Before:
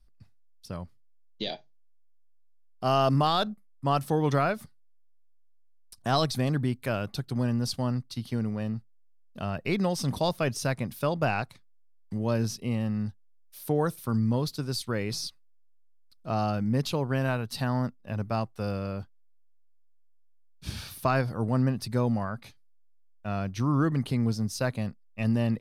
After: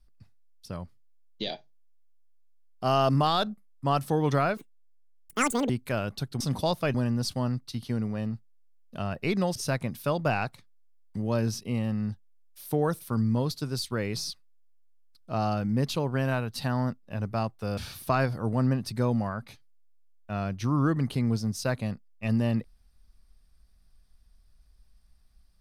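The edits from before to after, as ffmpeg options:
-filter_complex "[0:a]asplit=7[s0][s1][s2][s3][s4][s5][s6];[s0]atrim=end=4.574[s7];[s1]atrim=start=4.57:end=6.66,asetpts=PTS-STARTPTS,asetrate=82026,aresample=44100,atrim=end_sample=49553,asetpts=PTS-STARTPTS[s8];[s2]atrim=start=6.656:end=7.372[s9];[s3]atrim=start=9.978:end=10.522[s10];[s4]atrim=start=7.368:end=9.982[s11];[s5]atrim=start=10.518:end=18.742[s12];[s6]atrim=start=20.728[s13];[s7][s8]acrossfade=d=0.004:c1=hsin:c2=hsin[s14];[s14][s9]acrossfade=d=0.004:c1=hsin:c2=hsin[s15];[s15][s10]acrossfade=d=0.004:c1=hsin:c2=hsin[s16];[s16][s11]acrossfade=d=0.004:c1=hsin:c2=hsin[s17];[s17][s12]acrossfade=d=0.004:c1=hsin:c2=hsin[s18];[s18][s13]acrossfade=d=0.004:c1=hsin:c2=hsin"

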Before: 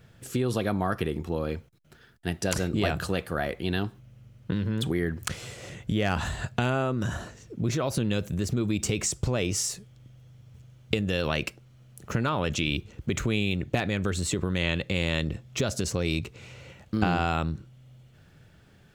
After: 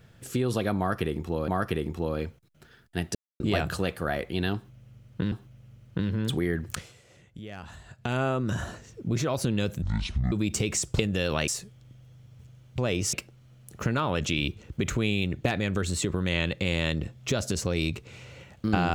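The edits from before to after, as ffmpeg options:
-filter_complex "[0:a]asplit=13[s0][s1][s2][s3][s4][s5][s6][s7][s8][s9][s10][s11][s12];[s0]atrim=end=1.482[s13];[s1]atrim=start=0.778:end=2.45,asetpts=PTS-STARTPTS,afade=t=out:st=1.668:d=0.004:c=hsin[s14];[s2]atrim=start=2.45:end=2.7,asetpts=PTS-STARTPTS,volume=0[s15];[s3]atrim=start=2.7:end=4.622,asetpts=PTS-STARTPTS,afade=t=in:d=0.004:c=hsin[s16];[s4]atrim=start=3.848:end=5.46,asetpts=PTS-STARTPTS,afade=t=out:st=1.342:d=0.27:silence=0.177828[s17];[s5]atrim=start=5.46:end=6.47,asetpts=PTS-STARTPTS,volume=0.178[s18];[s6]atrim=start=6.47:end=8.354,asetpts=PTS-STARTPTS,afade=t=in:d=0.27:silence=0.177828[s19];[s7]atrim=start=8.35:end=8.61,asetpts=PTS-STARTPTS,asetrate=22932,aresample=44100[s20];[s8]atrim=start=8.606:end=9.282[s21];[s9]atrim=start=10.928:end=11.422[s22];[s10]atrim=start=9.628:end=10.932[s23];[s11]atrim=start=9.278:end=9.632[s24];[s12]atrim=start=11.418[s25];[s14][s15][s16]concat=n=3:v=0:a=1[s26];[s13][s26]acrossfade=d=0.004:c1=hsin:c2=hsin[s27];[s17][s18][s19]concat=n=3:v=0:a=1[s28];[s27][s28]acrossfade=d=0.004:c1=hsin:c2=hsin[s29];[s29][s20]acrossfade=d=0.004:c1=hsin:c2=hsin[s30];[s30][s21]acrossfade=d=0.004:c1=hsin:c2=hsin[s31];[s31][s22]acrossfade=d=0.004:c1=hsin:c2=hsin[s32];[s32][s23]acrossfade=d=0.004:c1=hsin:c2=hsin[s33];[s33][s24]acrossfade=d=0.004:c1=hsin:c2=hsin[s34];[s34][s25]acrossfade=d=0.004:c1=hsin:c2=hsin"

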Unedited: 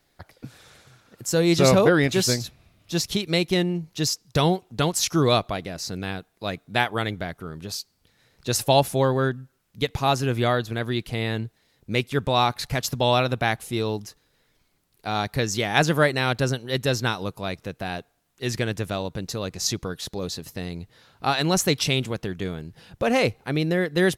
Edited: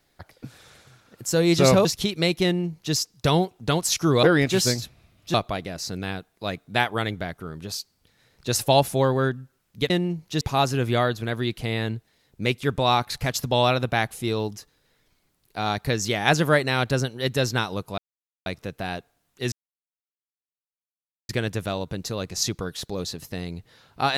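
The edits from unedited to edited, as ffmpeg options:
-filter_complex "[0:a]asplit=8[s0][s1][s2][s3][s4][s5][s6][s7];[s0]atrim=end=1.852[s8];[s1]atrim=start=2.958:end=5.342[s9];[s2]atrim=start=1.848:end=2.962[s10];[s3]atrim=start=5.338:end=9.902[s11];[s4]atrim=start=3.548:end=4.062[s12];[s5]atrim=start=9.898:end=17.47,asetpts=PTS-STARTPTS,afade=t=out:st=7.568:d=0.004:c=hsin,apad=pad_dur=0.48[s13];[s6]atrim=start=17.47:end=18.53,asetpts=PTS-STARTPTS,afade=t=in:d=0.004:c=hsin,afade=t=out:st=1.056:d=0.004:c=hsin,apad=pad_dur=1.77[s14];[s7]atrim=start=18.53,asetpts=PTS-STARTPTS,afade=t=in:d=0.004:c=hsin[s15];[s8][s9]acrossfade=d=0.004:c1=hsin:c2=hsin[s16];[s16][s10]acrossfade=d=0.004:c1=hsin:c2=hsin[s17];[s17][s11]acrossfade=d=0.004:c1=hsin:c2=hsin[s18];[s18][s12]acrossfade=d=0.004:c1=hsin:c2=hsin[s19];[s13][s14][s15]concat=n=3:v=0:a=1[s20];[s19][s20]acrossfade=d=0.004:c1=hsin:c2=hsin"

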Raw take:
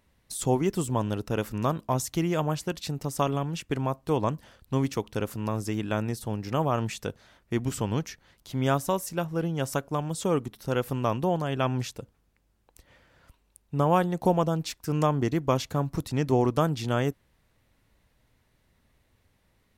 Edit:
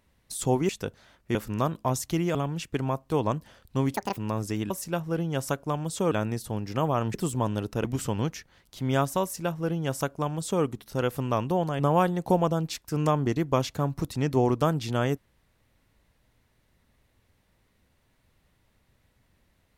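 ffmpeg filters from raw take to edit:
-filter_complex "[0:a]asplit=11[s0][s1][s2][s3][s4][s5][s6][s7][s8][s9][s10];[s0]atrim=end=0.692[s11];[s1]atrim=start=6.908:end=7.572[s12];[s2]atrim=start=1.388:end=2.392[s13];[s3]atrim=start=3.318:end=4.914[s14];[s4]atrim=start=4.91:end=5.35,asetpts=PTS-STARTPTS,asetrate=83349,aresample=44100[s15];[s5]atrim=start=5.346:end=5.882[s16];[s6]atrim=start=8.948:end=10.362[s17];[s7]atrim=start=5.878:end=6.912[s18];[s8]atrim=start=0.688:end=1.392[s19];[s9]atrim=start=7.568:end=11.522[s20];[s10]atrim=start=13.748[s21];[s11][s12]acrossfade=d=0.004:c1=hsin:c2=hsin[s22];[s22][s13]acrossfade=d=0.004:c1=hsin:c2=hsin[s23];[s23][s14]acrossfade=d=0.004:c1=hsin:c2=hsin[s24];[s24][s15]acrossfade=d=0.004:c1=hsin:c2=hsin[s25];[s25][s16]acrossfade=d=0.004:c1=hsin:c2=hsin[s26];[s26][s17]acrossfade=d=0.004:c1=hsin:c2=hsin[s27];[s27][s18]acrossfade=d=0.004:c1=hsin:c2=hsin[s28];[s28][s19]acrossfade=d=0.004:c1=hsin:c2=hsin[s29];[s29][s20]acrossfade=d=0.004:c1=hsin:c2=hsin[s30];[s30][s21]acrossfade=d=0.004:c1=hsin:c2=hsin"

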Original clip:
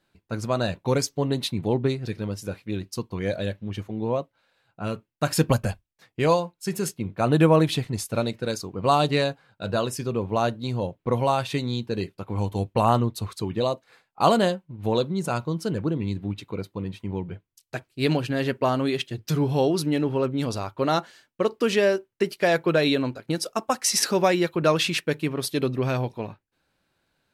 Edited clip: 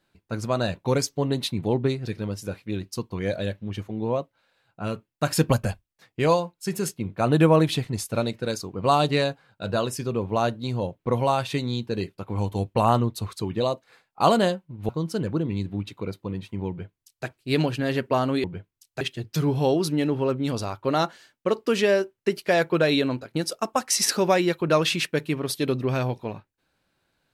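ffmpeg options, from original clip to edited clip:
-filter_complex "[0:a]asplit=4[s0][s1][s2][s3];[s0]atrim=end=14.892[s4];[s1]atrim=start=15.398:end=18.952[s5];[s2]atrim=start=17.198:end=17.772[s6];[s3]atrim=start=18.948[s7];[s4][s5]acrossfade=d=0.004:c1=hsin:c2=hsin[s8];[s8][s6]acrossfade=d=0.004:c1=hsin:c2=hsin[s9];[s9][s7]acrossfade=d=0.004:c1=hsin:c2=hsin"

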